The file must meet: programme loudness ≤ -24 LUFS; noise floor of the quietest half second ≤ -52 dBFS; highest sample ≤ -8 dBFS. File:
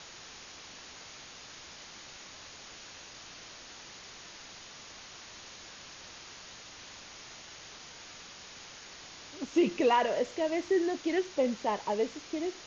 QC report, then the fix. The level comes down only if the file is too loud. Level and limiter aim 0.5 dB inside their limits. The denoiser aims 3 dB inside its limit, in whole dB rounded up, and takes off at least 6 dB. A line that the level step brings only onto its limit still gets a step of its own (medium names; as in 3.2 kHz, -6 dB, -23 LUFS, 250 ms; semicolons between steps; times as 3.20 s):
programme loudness -30.0 LUFS: pass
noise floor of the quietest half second -49 dBFS: fail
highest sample -15.0 dBFS: pass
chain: noise reduction 6 dB, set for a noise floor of -49 dBFS